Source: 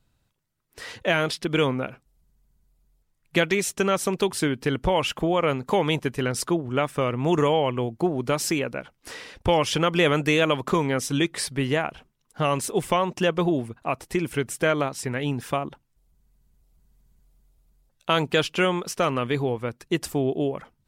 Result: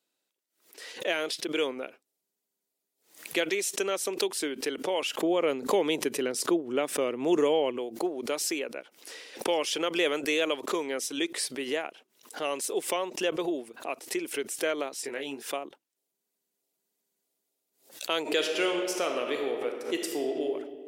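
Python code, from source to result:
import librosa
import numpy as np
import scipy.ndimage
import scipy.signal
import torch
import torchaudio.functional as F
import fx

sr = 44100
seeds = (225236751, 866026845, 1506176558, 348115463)

y = fx.low_shelf(x, sr, hz=300.0, db=12.0, at=(5.2, 7.78))
y = fx.doubler(y, sr, ms=22.0, db=-5.0, at=(15.02, 15.43))
y = fx.reverb_throw(y, sr, start_s=18.2, length_s=2.25, rt60_s=1.9, drr_db=2.5)
y = scipy.signal.sosfilt(scipy.signal.butter(4, 340.0, 'highpass', fs=sr, output='sos'), y)
y = fx.peak_eq(y, sr, hz=1100.0, db=-9.0, octaves=1.8)
y = fx.pre_swell(y, sr, db_per_s=140.0)
y = F.gain(torch.from_numpy(y), -2.0).numpy()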